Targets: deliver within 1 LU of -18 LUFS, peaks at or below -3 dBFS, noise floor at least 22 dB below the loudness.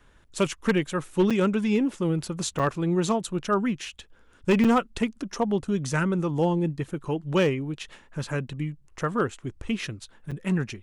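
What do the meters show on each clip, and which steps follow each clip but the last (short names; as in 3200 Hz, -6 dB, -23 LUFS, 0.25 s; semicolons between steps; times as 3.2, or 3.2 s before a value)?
clipped 0.5%; flat tops at -15.0 dBFS; dropouts 4; longest dropout 6.2 ms; loudness -26.5 LUFS; peak -15.0 dBFS; loudness target -18.0 LUFS
-> clip repair -15 dBFS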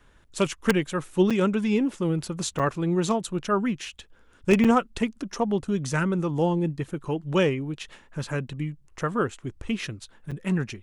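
clipped 0.0%; dropouts 4; longest dropout 6.2 ms
-> interpolate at 1.3/2.59/4.64/10.31, 6.2 ms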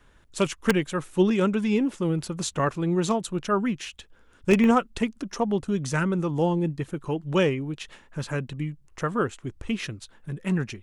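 dropouts 0; loudness -26.0 LUFS; peak -6.0 dBFS; loudness target -18.0 LUFS
-> gain +8 dB; limiter -3 dBFS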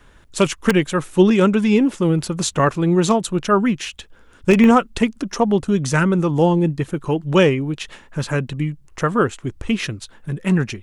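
loudness -18.5 LUFS; peak -3.0 dBFS; noise floor -49 dBFS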